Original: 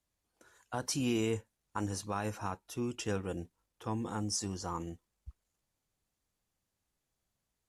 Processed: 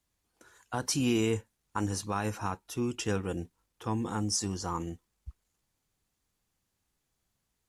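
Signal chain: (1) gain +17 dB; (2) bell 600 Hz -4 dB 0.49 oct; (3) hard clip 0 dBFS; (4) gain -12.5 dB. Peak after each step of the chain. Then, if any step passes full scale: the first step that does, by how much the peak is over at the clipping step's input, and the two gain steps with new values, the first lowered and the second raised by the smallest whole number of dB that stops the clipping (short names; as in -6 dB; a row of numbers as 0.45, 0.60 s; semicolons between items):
-4.0, -4.0, -4.0, -16.5 dBFS; no overload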